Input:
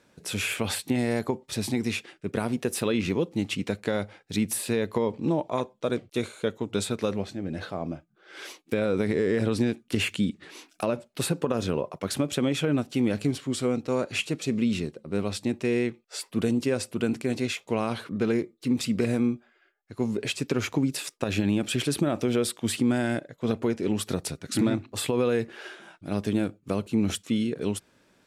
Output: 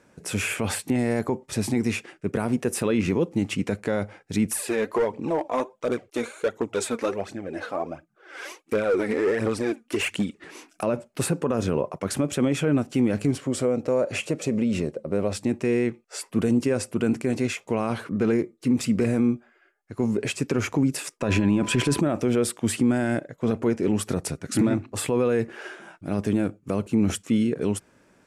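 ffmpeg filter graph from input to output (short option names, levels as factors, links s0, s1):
-filter_complex "[0:a]asettb=1/sr,asplit=3[s0][s1][s2];[s0]atrim=end=4.474[s3];[s1]atrim=start=4.47:end=10.44,asetpts=PTS-STARTPTS,afade=t=in:d=0.004:c=qsin,afade=t=out:st=5.966:d=0.004:c=qsin,bass=f=250:g=-13,treble=f=4000:g=-2,aphaser=in_gain=1:out_gain=1:delay=4.4:decay=0.58:speed=1.4:type=triangular,volume=13.3,asoftclip=hard,volume=0.075[s4];[s2]atrim=start=10.436[s5];[s3][s4]acrossfade=d=0.004:c1=hsin:c2=qsin[s6];[s6][s5]acrossfade=d=0.004:c1=qsin:c2=hsin,asettb=1/sr,asplit=3[s7][s8][s9];[s7]atrim=end=13.414[s10];[s8]atrim=start=13.41:end=15.33,asetpts=PTS-STARTPTS,afade=t=in:d=0.004:c=qsin,afade=t=out:st=1.916:d=0.004:c=qsin,equalizer=f=570:w=2.5:g=11,acompressor=threshold=0.0562:ratio=2.5:attack=3.2:release=140:knee=1:detection=peak[s11];[s9]atrim=start=15.326[s12];[s10][s11]acrossfade=d=0.004:c1=hsin:c2=qsin[s13];[s13][s12]acrossfade=d=0.004:c1=qsin:c2=hsin,asettb=1/sr,asplit=3[s14][s15][s16];[s14]atrim=end=21.214[s17];[s15]atrim=start=21.21:end=22.01,asetpts=PTS-STARTPTS,afade=t=in:d=0.004:c=qsin,afade=t=out:st=0.796:d=0.004:c=qsin,highshelf=f=9700:g=-12,acontrast=35,aeval=exprs='val(0)+0.00891*sin(2*PI*1000*n/s)':c=same[s18];[s16]atrim=start=22.006[s19];[s17][s18]acrossfade=d=0.004:c1=hsin:c2=qsin[s20];[s20][s19]acrossfade=d=0.004:c1=qsin:c2=hsin,lowpass=11000,equalizer=f=3800:w=1.6:g=-9.5,alimiter=limit=0.133:level=0:latency=1:release=11,volume=1.68"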